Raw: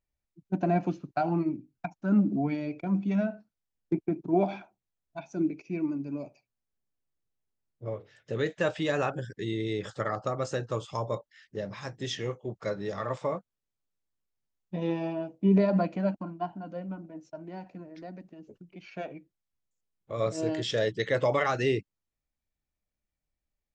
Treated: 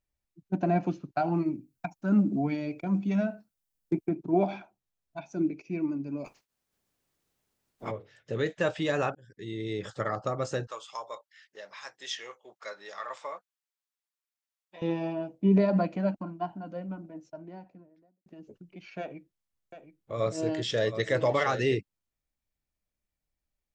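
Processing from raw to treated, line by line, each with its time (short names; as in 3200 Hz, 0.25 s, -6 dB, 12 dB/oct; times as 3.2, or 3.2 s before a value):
1.33–4.09 high shelf 6800 Hz +11 dB
6.24–7.9 spectral limiter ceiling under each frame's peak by 29 dB
9.15–10.13 fade in equal-power
10.67–14.82 HPF 960 Hz
17.08–18.26 studio fade out
19–21.77 echo 0.722 s -10.5 dB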